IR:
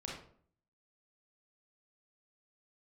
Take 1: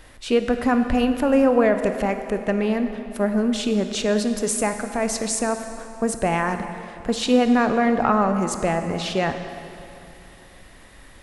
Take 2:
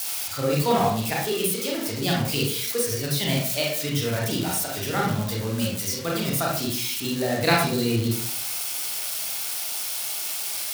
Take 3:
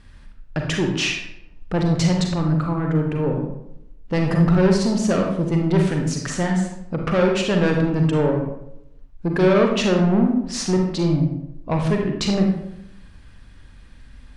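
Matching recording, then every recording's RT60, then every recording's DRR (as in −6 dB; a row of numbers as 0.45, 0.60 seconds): 2; 2.9, 0.55, 0.80 seconds; 7.0, −3.5, 1.5 decibels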